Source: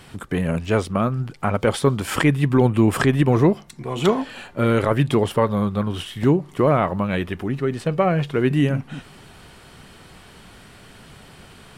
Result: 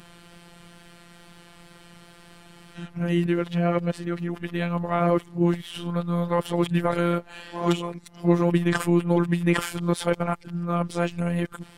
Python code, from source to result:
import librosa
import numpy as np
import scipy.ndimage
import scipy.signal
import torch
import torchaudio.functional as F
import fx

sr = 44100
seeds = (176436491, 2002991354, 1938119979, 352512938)

y = np.flip(x).copy()
y = fx.wow_flutter(y, sr, seeds[0], rate_hz=2.1, depth_cents=35.0)
y = fx.robotise(y, sr, hz=172.0)
y = y * 10.0 ** (-2.0 / 20.0)